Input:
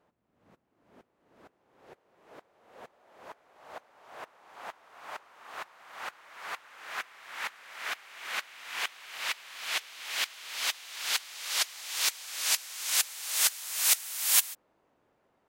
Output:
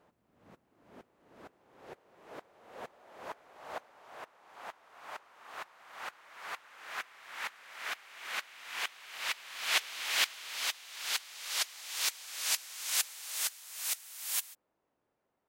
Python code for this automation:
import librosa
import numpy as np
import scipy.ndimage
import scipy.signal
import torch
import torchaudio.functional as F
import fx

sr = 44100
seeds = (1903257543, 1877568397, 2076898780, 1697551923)

y = fx.gain(x, sr, db=fx.line((3.72, 4.0), (4.21, -3.0), (9.21, -3.0), (9.97, 5.0), (10.73, -4.0), (13.05, -4.0), (13.63, -10.5)))